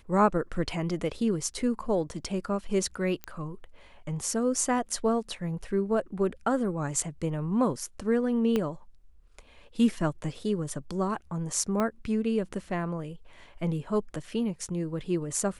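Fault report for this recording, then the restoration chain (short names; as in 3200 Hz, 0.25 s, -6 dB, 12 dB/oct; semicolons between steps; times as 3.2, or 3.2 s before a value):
3.24 pop -20 dBFS
8.56 pop -15 dBFS
11.8 pop -16 dBFS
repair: de-click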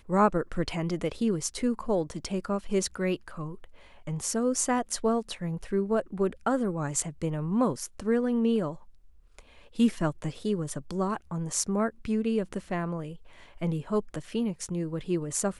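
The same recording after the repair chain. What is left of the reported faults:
8.56 pop
11.8 pop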